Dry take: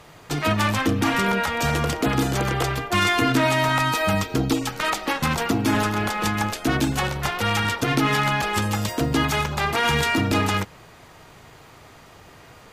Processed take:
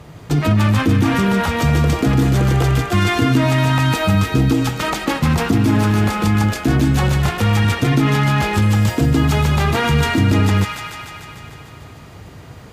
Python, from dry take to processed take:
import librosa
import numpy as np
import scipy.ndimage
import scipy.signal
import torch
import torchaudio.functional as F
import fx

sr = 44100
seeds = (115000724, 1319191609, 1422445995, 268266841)

p1 = fx.low_shelf(x, sr, hz=460.0, db=10.5)
p2 = fx.echo_wet_highpass(p1, sr, ms=149, feedback_pct=72, hz=1400.0, wet_db=-4.0)
p3 = fx.over_compress(p2, sr, threshold_db=-18.0, ratio=-1.0)
p4 = p2 + F.gain(torch.from_numpy(p3), -2.5).numpy()
p5 = scipy.signal.sosfilt(scipy.signal.butter(2, 66.0, 'highpass', fs=sr, output='sos'), p4)
p6 = fx.low_shelf(p5, sr, hz=150.0, db=8.0)
y = F.gain(torch.from_numpy(p6), -6.0).numpy()